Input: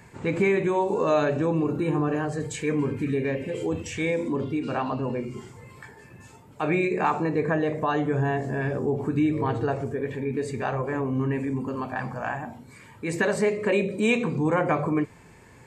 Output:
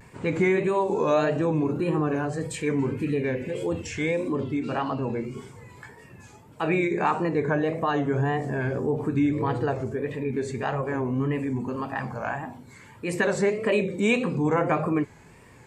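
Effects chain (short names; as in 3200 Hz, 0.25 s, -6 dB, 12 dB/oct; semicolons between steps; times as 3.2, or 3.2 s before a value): vibrato 1.7 Hz 99 cents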